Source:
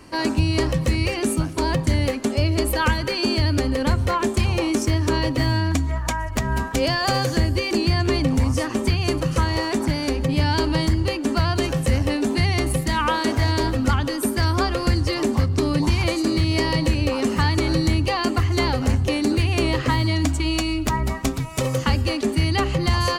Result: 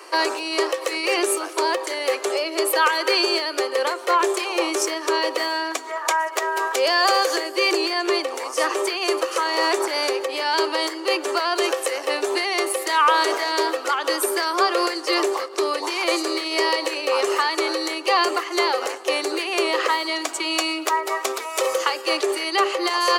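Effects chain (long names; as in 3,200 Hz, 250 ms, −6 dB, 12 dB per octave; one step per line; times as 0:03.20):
in parallel at −2.5 dB: compressor whose output falls as the input rises −25 dBFS, ratio −1
on the sum: Butterworth high-pass 350 Hz 72 dB per octave
parametric band 1,200 Hz +5.5 dB 0.23 octaves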